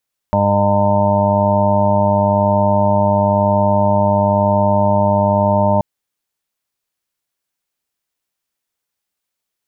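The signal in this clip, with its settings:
steady harmonic partials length 5.48 s, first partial 101 Hz, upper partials 0/−12.5/−17/−15.5/3/−10.5/−9/1/−10.5 dB, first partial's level −18 dB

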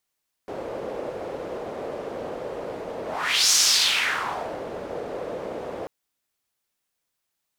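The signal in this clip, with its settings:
pass-by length 5.39 s, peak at 0:03.05, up 0.52 s, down 1.15 s, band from 510 Hz, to 5,900 Hz, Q 2.7, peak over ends 15 dB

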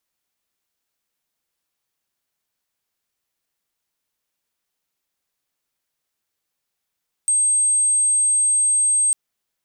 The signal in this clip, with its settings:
tone sine 8,400 Hz −14.5 dBFS 1.85 s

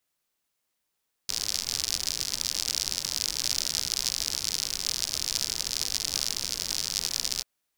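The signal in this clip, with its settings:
rain-like ticks over hiss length 6.14 s, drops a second 82, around 5,100 Hz, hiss −14 dB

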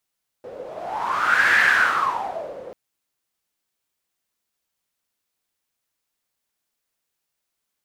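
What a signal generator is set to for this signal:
wind from filtered noise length 2.29 s, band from 500 Hz, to 1,700 Hz, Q 8.5, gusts 1, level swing 20 dB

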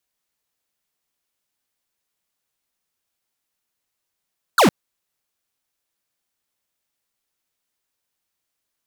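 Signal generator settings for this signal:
single falling chirp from 1,600 Hz, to 150 Hz, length 0.11 s square, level −12.5 dB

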